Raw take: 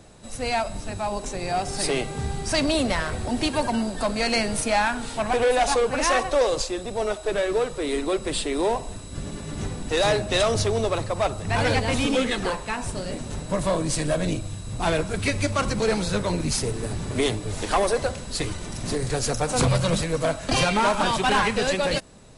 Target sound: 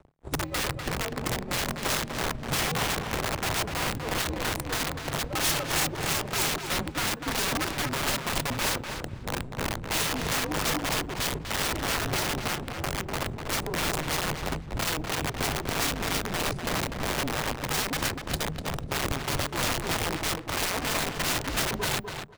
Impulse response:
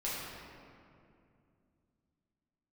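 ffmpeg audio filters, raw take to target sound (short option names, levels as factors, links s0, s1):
-filter_complex "[0:a]firequalizer=gain_entry='entry(200,0);entry(320,8);entry(1300,-17);entry(2300,-15);entry(4900,-23)':delay=0.05:min_phase=1,asplit=2[s0][s1];[s1]acompressor=threshold=0.0316:ratio=6,volume=1.06[s2];[s0][s2]amix=inputs=2:normalize=0,aeval=exprs='sgn(val(0))*max(abs(val(0))-0.0141,0)':c=same,tremolo=f=3.1:d=0.84,aeval=exprs='0.398*(cos(1*acos(clip(val(0)/0.398,-1,1)))-cos(1*PI/2))+0.00251*(cos(7*acos(clip(val(0)/0.398,-1,1)))-cos(7*PI/2))+0.0794*(cos(8*acos(clip(val(0)/0.398,-1,1)))-cos(8*PI/2))':c=same,aeval=exprs='(mod(10.6*val(0)+1,2)-1)/10.6':c=same,afreqshift=-160,asplit=2[s3][s4];[s4]adelay=247,lowpass=f=3600:p=1,volume=0.501,asplit=2[s5][s6];[s6]adelay=247,lowpass=f=3600:p=1,volume=0.18,asplit=2[s7][s8];[s8]adelay=247,lowpass=f=3600:p=1,volume=0.18[s9];[s5][s7][s9]amix=inputs=3:normalize=0[s10];[s3][s10]amix=inputs=2:normalize=0"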